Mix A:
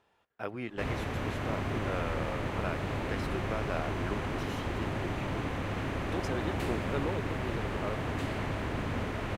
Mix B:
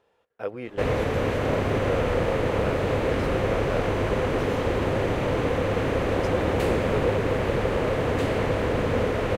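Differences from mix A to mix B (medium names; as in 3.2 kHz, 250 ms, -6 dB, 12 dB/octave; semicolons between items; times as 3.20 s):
background +7.0 dB; master: add peaking EQ 490 Hz +12.5 dB 0.45 oct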